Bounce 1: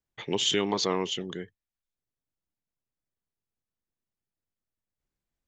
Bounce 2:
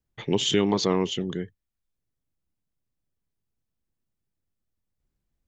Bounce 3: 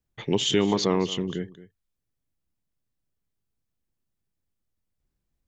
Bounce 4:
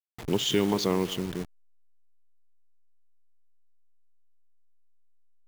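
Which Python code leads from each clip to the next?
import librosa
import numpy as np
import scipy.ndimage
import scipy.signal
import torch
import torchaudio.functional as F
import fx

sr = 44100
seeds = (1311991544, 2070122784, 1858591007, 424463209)

y1 = fx.low_shelf(x, sr, hz=340.0, db=11.0)
y2 = y1 + 10.0 ** (-17.0 / 20.0) * np.pad(y1, (int(221 * sr / 1000.0), 0))[:len(y1)]
y3 = fx.delta_hold(y2, sr, step_db=-32.0)
y3 = F.gain(torch.from_numpy(y3), -2.5).numpy()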